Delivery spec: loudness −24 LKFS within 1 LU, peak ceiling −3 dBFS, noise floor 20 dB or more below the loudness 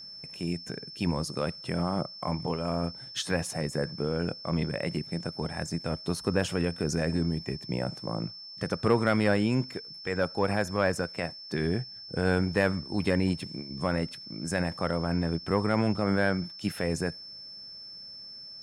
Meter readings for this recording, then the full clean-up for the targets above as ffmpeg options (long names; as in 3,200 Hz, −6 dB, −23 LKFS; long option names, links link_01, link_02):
interfering tone 5,300 Hz; level of the tone −42 dBFS; integrated loudness −30.0 LKFS; sample peak −11.5 dBFS; target loudness −24.0 LKFS
→ -af "bandreject=frequency=5300:width=30"
-af "volume=6dB"